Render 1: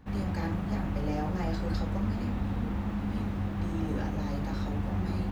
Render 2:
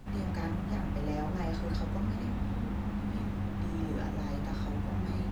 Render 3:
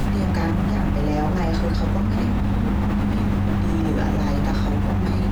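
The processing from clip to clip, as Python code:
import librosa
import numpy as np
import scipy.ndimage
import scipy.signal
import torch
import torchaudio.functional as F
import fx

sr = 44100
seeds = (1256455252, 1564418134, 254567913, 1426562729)

y1 = fx.dmg_noise_colour(x, sr, seeds[0], colour='brown', level_db=-44.0)
y1 = y1 * librosa.db_to_amplitude(-2.5)
y2 = fx.env_flatten(y1, sr, amount_pct=100)
y2 = y2 * librosa.db_to_amplitude(9.0)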